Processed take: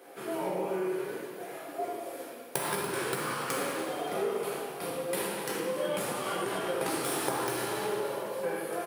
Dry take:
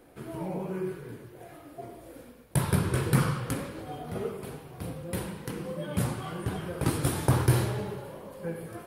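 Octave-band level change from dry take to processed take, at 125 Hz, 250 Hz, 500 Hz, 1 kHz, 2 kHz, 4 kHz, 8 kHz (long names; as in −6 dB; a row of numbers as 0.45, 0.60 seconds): −18.0, −4.5, +4.0, +3.5, +3.0, +3.5, +2.0 decibels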